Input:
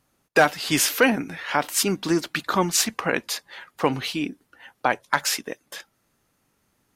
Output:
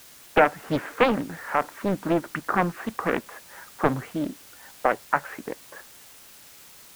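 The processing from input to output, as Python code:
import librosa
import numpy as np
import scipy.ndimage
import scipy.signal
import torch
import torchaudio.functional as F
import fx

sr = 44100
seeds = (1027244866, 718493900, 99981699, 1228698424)

y = scipy.signal.sosfilt(scipy.signal.cheby2(4, 60, 5400.0, 'lowpass', fs=sr, output='sos'), x)
y = fx.quant_dither(y, sr, seeds[0], bits=8, dither='triangular')
y = fx.doppler_dist(y, sr, depth_ms=0.73)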